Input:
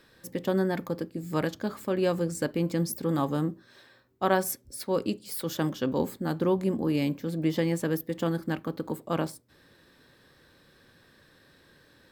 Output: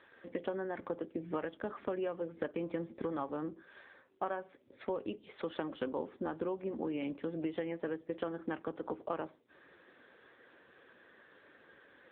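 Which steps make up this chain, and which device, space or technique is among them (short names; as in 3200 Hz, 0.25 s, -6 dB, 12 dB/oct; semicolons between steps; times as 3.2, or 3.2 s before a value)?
voicemail (BPF 350–2800 Hz; compressor 10:1, threshold -37 dBFS, peak gain reduction 18.5 dB; gain +4.5 dB; AMR-NB 6.7 kbps 8000 Hz)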